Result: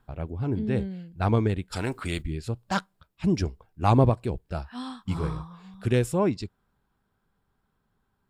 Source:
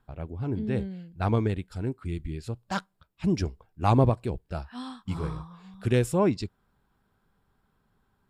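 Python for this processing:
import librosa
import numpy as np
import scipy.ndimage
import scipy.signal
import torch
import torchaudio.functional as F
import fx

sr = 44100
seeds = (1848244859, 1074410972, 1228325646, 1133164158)

y = fx.rider(x, sr, range_db=4, speed_s=2.0)
y = fx.spectral_comp(y, sr, ratio=2.0, at=(1.72, 2.21), fade=0.02)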